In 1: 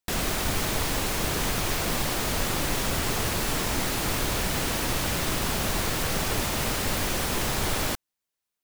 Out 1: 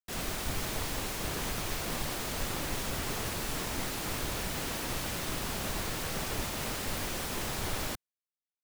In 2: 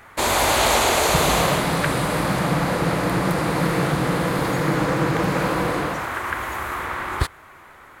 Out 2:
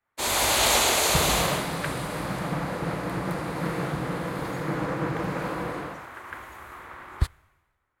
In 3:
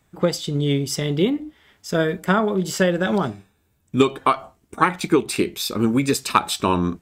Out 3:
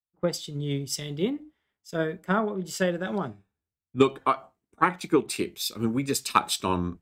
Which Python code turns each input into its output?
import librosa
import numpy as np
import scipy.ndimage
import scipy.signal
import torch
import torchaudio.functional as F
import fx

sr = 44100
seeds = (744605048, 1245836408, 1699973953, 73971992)

y = fx.band_widen(x, sr, depth_pct=100)
y = y * 10.0 ** (-7.5 / 20.0)